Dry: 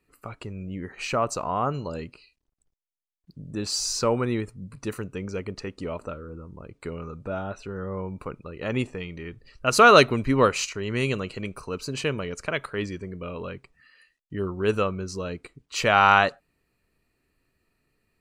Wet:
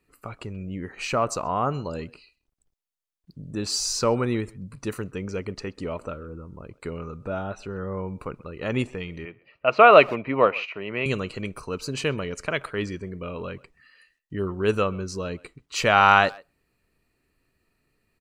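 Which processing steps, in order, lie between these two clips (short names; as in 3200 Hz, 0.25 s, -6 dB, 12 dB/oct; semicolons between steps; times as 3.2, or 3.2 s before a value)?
9.25–11.06 speaker cabinet 220–2700 Hz, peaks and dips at 250 Hz -6 dB, 390 Hz -4 dB, 660 Hz +7 dB, 1600 Hz -6 dB, 2500 Hz +5 dB; speakerphone echo 0.13 s, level -22 dB; gain +1 dB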